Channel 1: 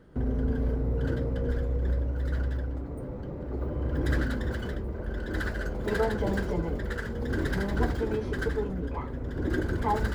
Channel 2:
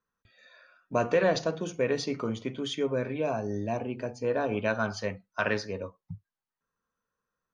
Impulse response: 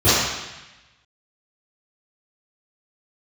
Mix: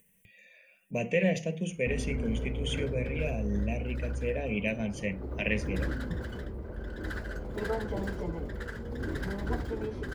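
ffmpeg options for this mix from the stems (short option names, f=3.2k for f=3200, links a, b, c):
-filter_complex "[0:a]adelay=1700,volume=-5.5dB[a];[1:a]firequalizer=gain_entry='entry(110,0);entry(190,10);entry(280,-7);entry(510,0);entry(1300,-28);entry(2000,9);entry(2900,8);entry(4100,-14);entry(8600,15)':delay=0.05:min_phase=1,volume=-3dB[b];[a][b]amix=inputs=2:normalize=0,acompressor=mode=upward:threshold=-52dB:ratio=2.5"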